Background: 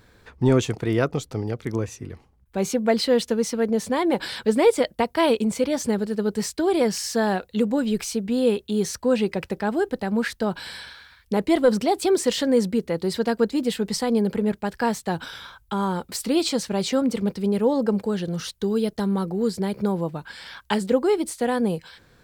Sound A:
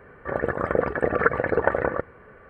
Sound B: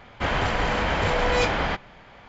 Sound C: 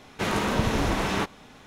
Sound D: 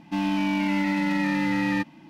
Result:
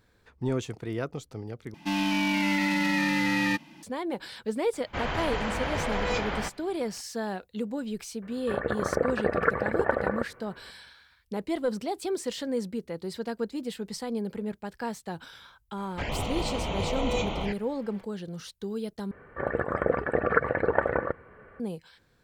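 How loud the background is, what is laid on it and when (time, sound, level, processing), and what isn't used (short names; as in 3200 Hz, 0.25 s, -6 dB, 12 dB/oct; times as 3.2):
background -10.5 dB
1.74 replace with D -3 dB + high shelf 2000 Hz +10.5 dB
4.73 add B -7 dB
8.22 add A -4 dB
15.77 add B -5 dB + envelope flanger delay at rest 6.6 ms, full sweep at -20.5 dBFS
19.11 replace with A -3 dB
not used: C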